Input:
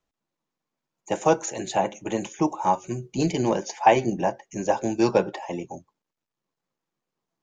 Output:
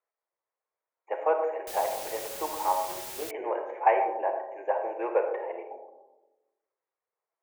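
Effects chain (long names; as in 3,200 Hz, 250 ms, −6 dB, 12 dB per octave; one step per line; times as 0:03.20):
elliptic band-pass filter 440–2,200 Hz, stop band 40 dB
on a send at −5 dB: convolution reverb RT60 1.1 s, pre-delay 15 ms
0:01.67–0:03.31: on the sum: bit-depth reduction 6 bits, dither triangular
level −4.5 dB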